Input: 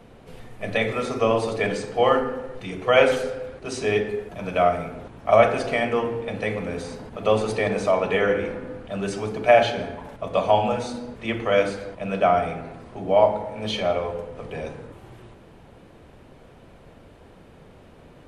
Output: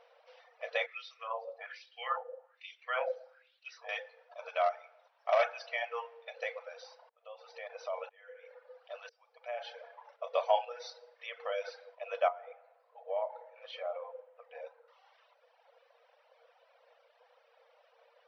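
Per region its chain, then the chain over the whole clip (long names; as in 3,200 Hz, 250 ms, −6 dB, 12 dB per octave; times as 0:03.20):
0:00.86–0:03.89: high-shelf EQ 3,400 Hz +10.5 dB + LFO wah 1.2 Hz 590–3,200 Hz, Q 3
0:04.48–0:06.35: parametric band 500 Hz −11 dB 0.24 octaves + gain into a clipping stage and back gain 11.5 dB
0:07.09–0:10.04: downward compressor 2 to 1, threshold −27 dBFS + shaped tremolo saw up 1 Hz, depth 95%
0:10.64–0:11.68: bass and treble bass +12 dB, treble +5 dB + downward compressor 10 to 1, threshold −20 dBFS
0:12.28–0:14.88: head-to-tape spacing loss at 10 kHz 28 dB + downward compressor 2 to 1, threshold −25 dBFS
whole clip: reverb reduction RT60 1.6 s; brick-wall band-pass 460–6,000 Hz; level −8.5 dB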